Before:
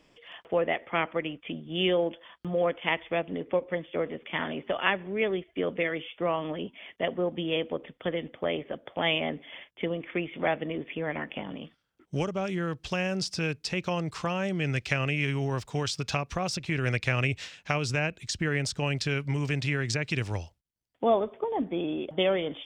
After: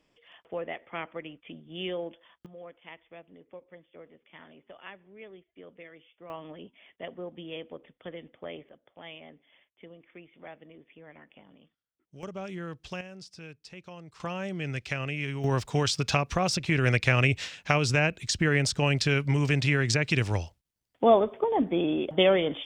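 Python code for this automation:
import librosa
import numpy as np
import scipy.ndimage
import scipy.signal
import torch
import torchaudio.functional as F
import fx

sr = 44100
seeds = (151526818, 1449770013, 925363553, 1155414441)

y = fx.gain(x, sr, db=fx.steps((0.0, -8.5), (2.46, -19.5), (6.3, -10.5), (8.69, -18.5), (12.23, -7.0), (13.01, -15.5), (14.2, -4.5), (15.44, 4.0)))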